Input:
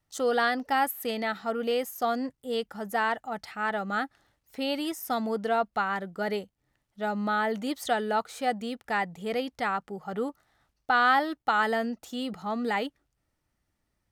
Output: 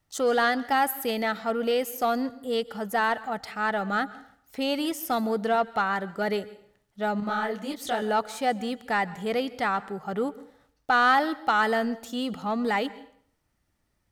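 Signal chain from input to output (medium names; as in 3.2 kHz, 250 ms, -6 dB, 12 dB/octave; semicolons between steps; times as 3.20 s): in parallel at -5.5 dB: saturation -26.5 dBFS, distortion -10 dB; on the sum: plate-style reverb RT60 0.6 s, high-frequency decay 0.85×, pre-delay 115 ms, DRR 18.5 dB; 7.20–8.02 s: detune thickener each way 52 cents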